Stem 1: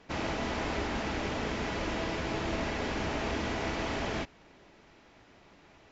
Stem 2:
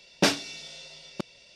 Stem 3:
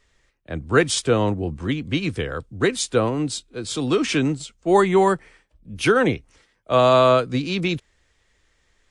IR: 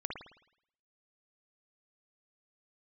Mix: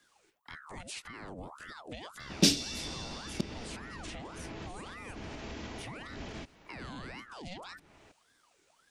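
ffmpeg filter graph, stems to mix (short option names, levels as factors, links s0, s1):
-filter_complex "[0:a]adelay=2200,volume=0.891[s0];[1:a]adelay=2200,volume=1.33[s1];[2:a]aemphasis=mode=production:type=50kf,aeval=exprs='val(0)*sin(2*PI*1000*n/s+1000*0.65/1.8*sin(2*PI*1.8*n/s))':c=same,volume=0.596[s2];[s0][s2]amix=inputs=2:normalize=0,acrossover=split=480|2900[s3][s4][s5];[s3]acompressor=threshold=0.0126:ratio=4[s6];[s4]acompressor=threshold=0.0282:ratio=4[s7];[s5]acompressor=threshold=0.00355:ratio=4[s8];[s6][s7][s8]amix=inputs=3:normalize=0,alimiter=level_in=1.88:limit=0.0631:level=0:latency=1:release=64,volume=0.531,volume=1[s9];[s1][s9]amix=inputs=2:normalize=0,acrossover=split=360|3000[s10][s11][s12];[s11]acompressor=threshold=0.00398:ratio=5[s13];[s10][s13][s12]amix=inputs=3:normalize=0"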